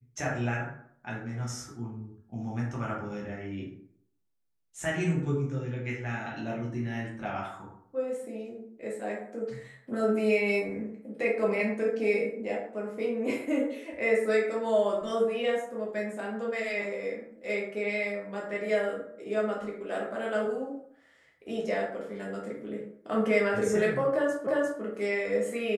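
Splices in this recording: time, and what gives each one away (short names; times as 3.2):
24.47 repeat of the last 0.35 s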